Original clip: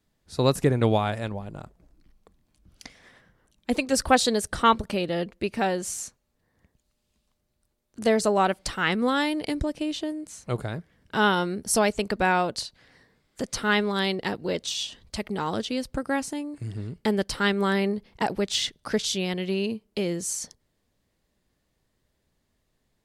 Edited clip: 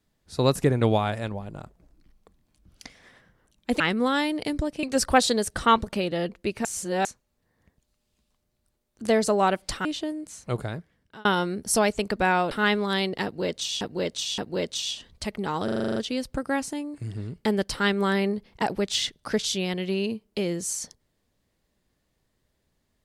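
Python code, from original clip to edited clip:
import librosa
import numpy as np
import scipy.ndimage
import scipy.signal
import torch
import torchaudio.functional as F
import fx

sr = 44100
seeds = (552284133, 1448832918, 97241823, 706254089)

y = fx.edit(x, sr, fx.reverse_span(start_s=5.62, length_s=0.4),
    fx.move(start_s=8.82, length_s=1.03, to_s=3.8),
    fx.fade_out_span(start_s=10.68, length_s=0.57),
    fx.cut(start_s=12.51, length_s=1.06),
    fx.repeat(start_s=14.3, length_s=0.57, count=3),
    fx.stutter(start_s=15.56, slice_s=0.04, count=9), tone=tone)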